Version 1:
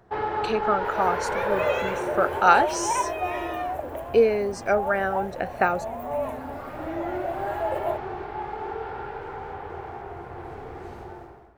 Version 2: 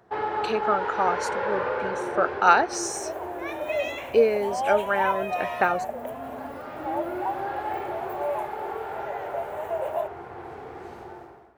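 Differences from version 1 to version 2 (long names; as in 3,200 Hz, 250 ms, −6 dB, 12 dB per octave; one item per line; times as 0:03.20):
second sound: entry +2.10 s
master: add high-pass filter 200 Hz 6 dB per octave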